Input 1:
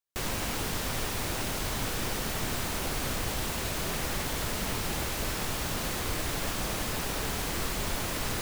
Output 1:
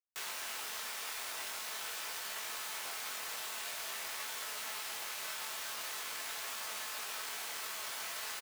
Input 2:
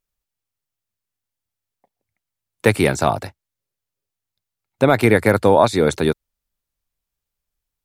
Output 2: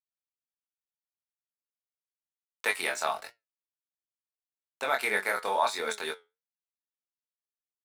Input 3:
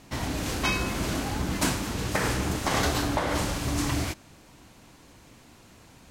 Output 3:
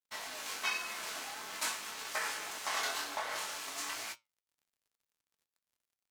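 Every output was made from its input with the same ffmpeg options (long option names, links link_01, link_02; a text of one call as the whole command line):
ffmpeg -i in.wav -filter_complex "[0:a]highpass=950,aecho=1:1:4.6:0.3,asplit=2[link_01][link_02];[link_02]acompressor=threshold=-39dB:ratio=6,volume=0dB[link_03];[link_01][link_03]amix=inputs=2:normalize=0,flanger=delay=17.5:depth=7.9:speed=0.46,aeval=exprs='sgn(val(0))*max(abs(val(0))-0.00501,0)':channel_layout=same,flanger=delay=8.4:depth=3.5:regen=74:speed=1.2:shape=triangular" out.wav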